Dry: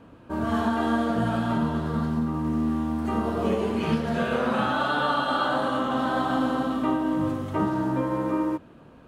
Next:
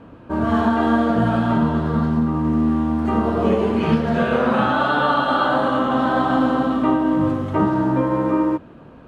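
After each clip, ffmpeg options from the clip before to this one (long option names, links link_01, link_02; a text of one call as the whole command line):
ffmpeg -i in.wav -af "lowpass=frequency=2600:poles=1,volume=7dB" out.wav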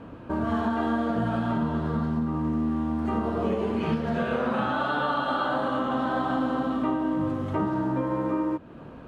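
ffmpeg -i in.wav -af "acompressor=threshold=-30dB:ratio=2" out.wav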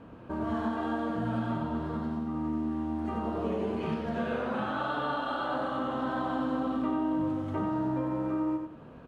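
ffmpeg -i in.wav -af "aecho=1:1:93|186|279|372:0.531|0.159|0.0478|0.0143,volume=-6.5dB" out.wav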